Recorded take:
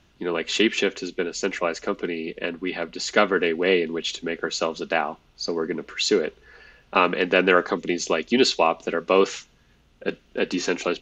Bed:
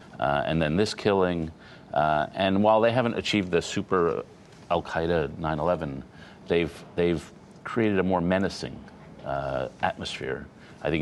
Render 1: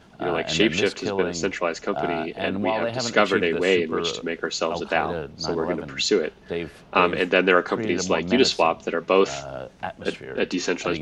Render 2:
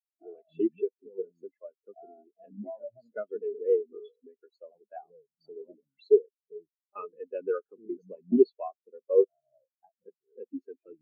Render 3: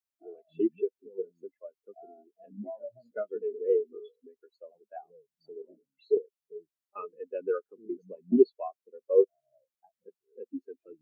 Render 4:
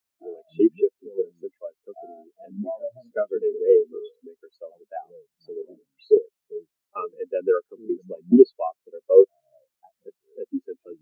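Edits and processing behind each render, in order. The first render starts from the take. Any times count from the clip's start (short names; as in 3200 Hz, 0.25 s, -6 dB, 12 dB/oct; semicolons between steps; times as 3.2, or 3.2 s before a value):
add bed -5 dB
compressor 1.5:1, threshold -29 dBFS, peak gain reduction 6.5 dB; spectral expander 4:1
2.84–3.94 doubler 16 ms -8.5 dB; 5.62–6.17 detuned doubles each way 29 cents
gain +9 dB; limiter -2 dBFS, peak gain reduction 2.5 dB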